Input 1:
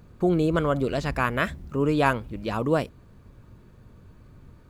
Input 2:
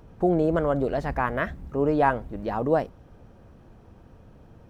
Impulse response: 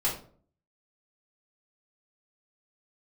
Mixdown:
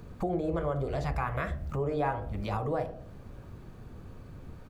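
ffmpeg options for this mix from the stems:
-filter_complex "[0:a]acrossover=split=180[a][b];[b]acompressor=threshold=-35dB:ratio=6[c];[a][c]amix=inputs=2:normalize=0,volume=2.5dB[d];[1:a]bandreject=f=910:w=10,adelay=1,volume=-6dB,asplit=3[e][f][g];[f]volume=-10.5dB[h];[g]apad=whole_len=206993[i];[d][i]sidechaincompress=threshold=-30dB:ratio=8:attack=16:release=109[j];[2:a]atrim=start_sample=2205[k];[h][k]afir=irnorm=-1:irlink=0[l];[j][e][l]amix=inputs=3:normalize=0,acompressor=threshold=-30dB:ratio=2"

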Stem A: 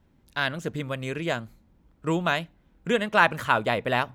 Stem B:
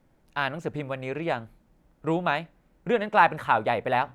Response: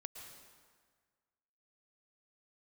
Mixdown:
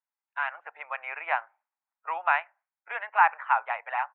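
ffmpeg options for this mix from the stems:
-filter_complex "[0:a]volume=-8.5dB[a];[1:a]dynaudnorm=f=240:g=5:m=16dB,agate=range=-33dB:threshold=-41dB:ratio=3:detection=peak,adelay=9.4,volume=-5.5dB,asplit=2[b][c];[c]apad=whole_len=182712[d];[a][d]sidechaincompress=threshold=-23dB:ratio=8:attack=16:release=793[e];[e][b]amix=inputs=2:normalize=0,afftdn=nr=14:nf=-47,asuperpass=centerf=1400:order=8:qfactor=0.81"

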